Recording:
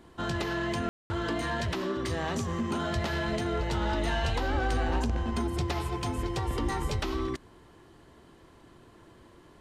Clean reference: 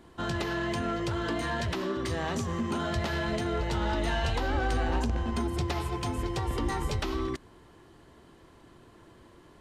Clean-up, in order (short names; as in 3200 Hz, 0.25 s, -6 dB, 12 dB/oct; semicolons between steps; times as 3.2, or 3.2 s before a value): room tone fill 0.89–1.1